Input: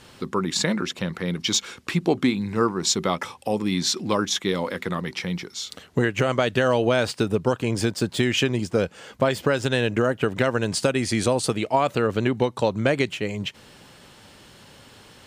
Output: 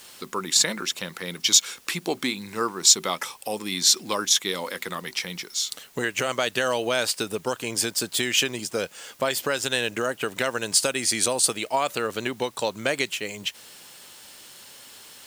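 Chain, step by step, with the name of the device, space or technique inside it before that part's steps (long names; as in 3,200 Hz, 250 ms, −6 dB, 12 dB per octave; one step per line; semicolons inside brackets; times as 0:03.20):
turntable without a phono preamp (RIAA equalisation recording; white noise bed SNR 29 dB)
level −2.5 dB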